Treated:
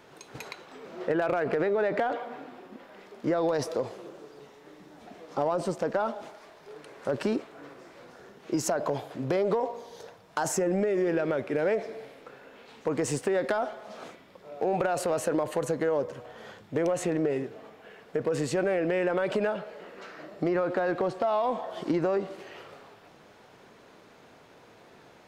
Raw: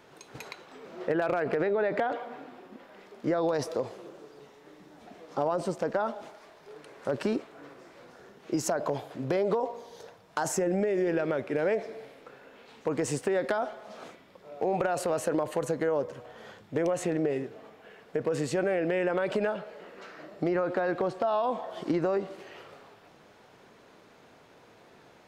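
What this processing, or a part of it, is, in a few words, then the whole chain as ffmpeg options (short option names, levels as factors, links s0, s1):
parallel distortion: -filter_complex "[0:a]asplit=2[s0][s1];[s1]asoftclip=type=hard:threshold=0.0282,volume=0.237[s2];[s0][s2]amix=inputs=2:normalize=0"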